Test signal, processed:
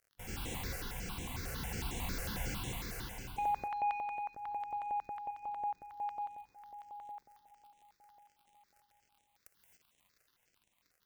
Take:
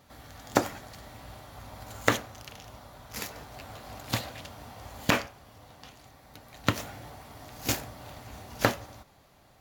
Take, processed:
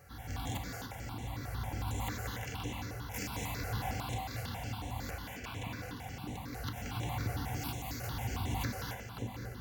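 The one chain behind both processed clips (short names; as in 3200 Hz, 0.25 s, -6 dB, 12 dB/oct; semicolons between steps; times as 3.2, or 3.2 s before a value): low shelf 74 Hz +7 dB; on a send: split-band echo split 420 Hz, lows 0.573 s, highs 0.174 s, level -13.5 dB; on the sum: compressor 10:1, threshold -39 dBFS; random-step tremolo, depth 55%; notch comb 620 Hz; harmonic-percussive split percussive -9 dB; crackle 77/s -65 dBFS; soft clip -39 dBFS; non-linear reverb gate 0.31 s rising, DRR 1 dB; step phaser 11 Hz 960–4700 Hz; gain +13.5 dB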